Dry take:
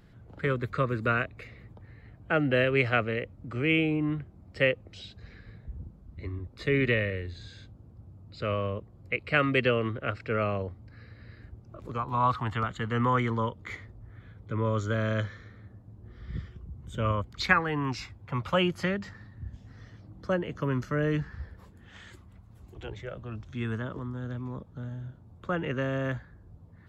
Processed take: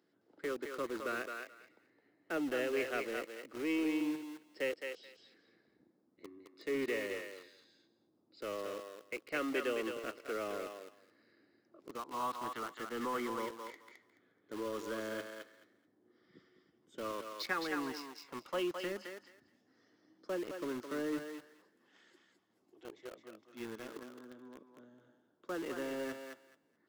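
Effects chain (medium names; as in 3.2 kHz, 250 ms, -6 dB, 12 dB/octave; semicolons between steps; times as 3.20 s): ladder high-pass 270 Hz, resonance 50%; peaking EQ 5.1 kHz +8 dB 0.35 oct; in parallel at -11 dB: companded quantiser 2-bit; on the sum: band-stop 2.4 kHz, Q 29; thinning echo 214 ms, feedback 19%, high-pass 570 Hz, level -4 dB; trim -7 dB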